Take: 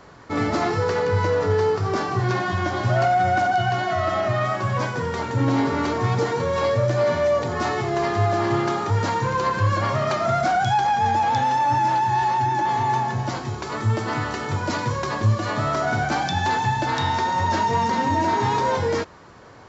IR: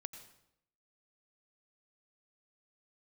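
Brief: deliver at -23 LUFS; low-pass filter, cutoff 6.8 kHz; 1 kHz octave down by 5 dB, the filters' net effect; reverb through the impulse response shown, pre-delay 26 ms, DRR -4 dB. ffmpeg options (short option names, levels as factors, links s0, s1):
-filter_complex "[0:a]lowpass=6800,equalizer=f=1000:t=o:g=-6.5,asplit=2[s0][s1];[1:a]atrim=start_sample=2205,adelay=26[s2];[s1][s2]afir=irnorm=-1:irlink=0,volume=2.37[s3];[s0][s3]amix=inputs=2:normalize=0,volume=0.631"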